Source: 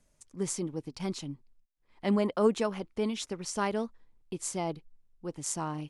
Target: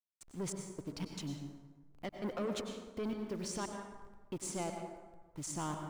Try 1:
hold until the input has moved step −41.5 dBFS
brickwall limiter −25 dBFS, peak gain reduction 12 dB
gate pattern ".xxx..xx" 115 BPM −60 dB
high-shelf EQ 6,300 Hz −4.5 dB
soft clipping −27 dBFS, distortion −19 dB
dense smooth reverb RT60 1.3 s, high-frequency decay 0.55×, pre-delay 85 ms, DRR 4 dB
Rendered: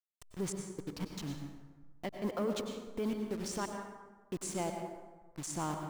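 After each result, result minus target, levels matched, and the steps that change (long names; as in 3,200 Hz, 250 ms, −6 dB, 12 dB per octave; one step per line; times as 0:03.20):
hold until the input has moved: distortion +12 dB; soft clipping: distortion −8 dB
change: hold until the input has moved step −53.5 dBFS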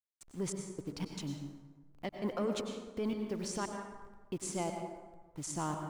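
soft clipping: distortion −8 dB
change: soft clipping −33.5 dBFS, distortion −11 dB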